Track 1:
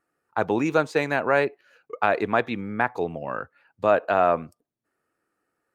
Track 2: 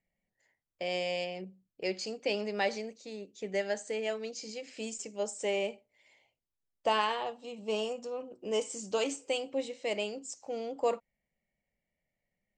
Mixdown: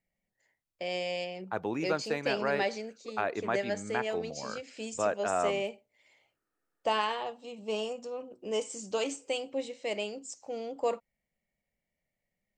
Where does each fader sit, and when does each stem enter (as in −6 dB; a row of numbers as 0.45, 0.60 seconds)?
−10.0, −0.5 decibels; 1.15, 0.00 seconds